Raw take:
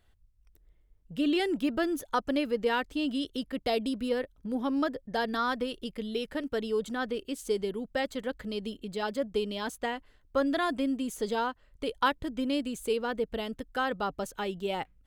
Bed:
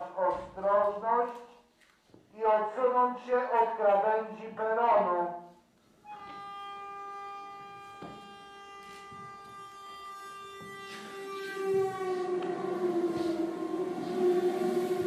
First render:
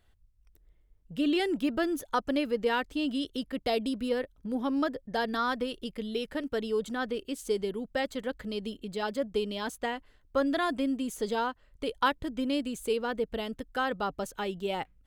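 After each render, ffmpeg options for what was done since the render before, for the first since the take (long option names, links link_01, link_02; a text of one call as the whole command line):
ffmpeg -i in.wav -af anull out.wav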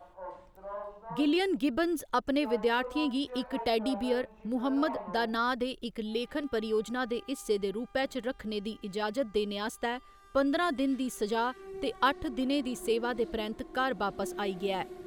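ffmpeg -i in.wav -i bed.wav -filter_complex "[1:a]volume=-14dB[link_01];[0:a][link_01]amix=inputs=2:normalize=0" out.wav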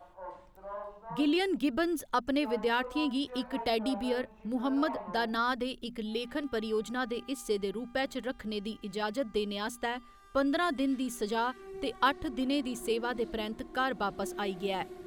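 ffmpeg -i in.wav -af "equalizer=frequency=490:width_type=o:width=0.83:gain=-2.5,bandreject=frequency=60:width_type=h:width=6,bandreject=frequency=120:width_type=h:width=6,bandreject=frequency=180:width_type=h:width=6,bandreject=frequency=240:width_type=h:width=6" out.wav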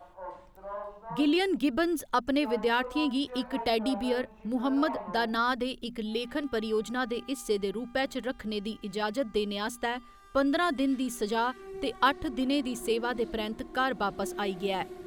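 ffmpeg -i in.wav -af "volume=2.5dB" out.wav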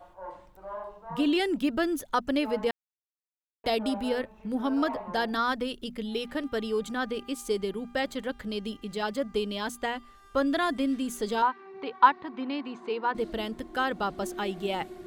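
ffmpeg -i in.wav -filter_complex "[0:a]asettb=1/sr,asplit=3[link_01][link_02][link_03];[link_01]atrim=end=11.424[link_04];[link_02]atrim=start=11.42:end=13.15,asetpts=PTS-STARTPTS,afade=type=in:duration=0.004:curve=qsin,afade=type=out:start_time=1.726:duration=0.004:curve=qsin,highpass=270,equalizer=frequency=340:width_type=q:width=4:gain=-6,equalizer=frequency=580:width_type=q:width=4:gain=-8,equalizer=frequency=950:width_type=q:width=4:gain=10,equalizer=frequency=3200:width_type=q:width=4:gain=-8,lowpass=frequency=3800:width=0.5412,lowpass=frequency=3800:width=1.3066[link_05];[link_03]atrim=start=13.146[link_06];[link_04][link_05]acrossfade=duration=0.004:curve1=hsin:curve2=qsin[link_07];[link_07][link_06]acrossfade=duration=0.004:curve1=qsin:curve2=hsin,asplit=3[link_08][link_09][link_10];[link_08]atrim=end=2.71,asetpts=PTS-STARTPTS,afade=type=out:start_time=2.706:duration=0.004:curve=hsin[link_11];[link_09]atrim=start=2.71:end=3.64,asetpts=PTS-STARTPTS,volume=0[link_12];[link_10]atrim=start=3.64,asetpts=PTS-STARTPTS,afade=type=in:duration=0.004:curve=hsin[link_13];[link_11][link_12][link_13]concat=n=3:v=0:a=1" out.wav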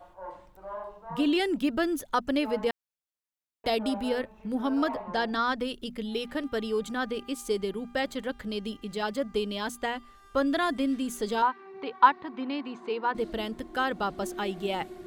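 ffmpeg -i in.wav -filter_complex "[0:a]asettb=1/sr,asplit=3[link_01][link_02][link_03];[link_01]atrim=end=5.024[link_04];[link_02]atrim=start=5.02:end=5.58,asetpts=PTS-STARTPTS,afade=type=in:duration=0.004:curve=qsin,afade=type=out:start_time=0.556:duration=0.004:curve=qsin,lowpass=7400[link_05];[link_03]atrim=start=5.576[link_06];[link_04][link_05]acrossfade=duration=0.004:curve1=hsin:curve2=qsin[link_07];[link_07][link_06]acrossfade=duration=0.004:curve1=qsin:curve2=hsin" out.wav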